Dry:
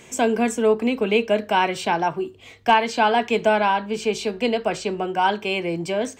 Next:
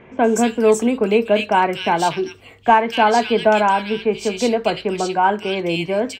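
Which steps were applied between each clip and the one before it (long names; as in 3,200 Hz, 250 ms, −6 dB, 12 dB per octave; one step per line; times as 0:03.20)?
multiband delay without the direct sound lows, highs 240 ms, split 2,300 Hz
level +4 dB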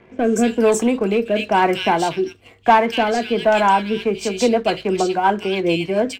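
leveller curve on the samples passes 1
rotating-speaker cabinet horn 1 Hz, later 7 Hz, at 0:03.54
on a send at −14 dB: convolution reverb RT60 0.20 s, pre-delay 3 ms
on the sum: level −1 dB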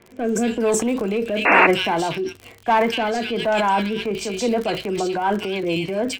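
surface crackle 55 per second −28 dBFS
sound drawn into the spectrogram noise, 0:01.45–0:01.67, 250–2,800 Hz −9 dBFS
transient designer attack −3 dB, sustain +7 dB
level −4 dB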